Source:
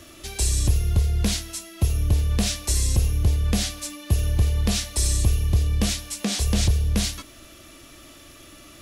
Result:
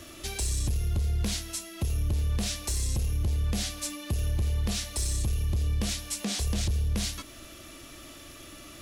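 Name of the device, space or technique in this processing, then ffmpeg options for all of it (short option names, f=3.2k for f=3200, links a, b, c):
soft clipper into limiter: -af "asoftclip=type=tanh:threshold=-13.5dB,alimiter=limit=-21.5dB:level=0:latency=1:release=273"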